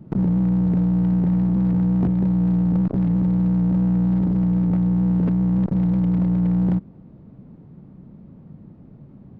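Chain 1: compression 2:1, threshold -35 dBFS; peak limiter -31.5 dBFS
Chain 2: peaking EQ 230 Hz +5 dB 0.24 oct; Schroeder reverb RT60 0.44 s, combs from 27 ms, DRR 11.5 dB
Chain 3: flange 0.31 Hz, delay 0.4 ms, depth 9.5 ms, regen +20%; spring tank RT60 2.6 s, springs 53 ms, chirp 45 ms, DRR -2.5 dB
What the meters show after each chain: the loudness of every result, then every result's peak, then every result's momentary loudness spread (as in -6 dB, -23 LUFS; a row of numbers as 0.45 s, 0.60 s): -37.0 LUFS, -19.5 LUFS, -23.0 LUFS; -31.5 dBFS, -10.5 dBFS, -8.5 dBFS; 9 LU, 1 LU, 8 LU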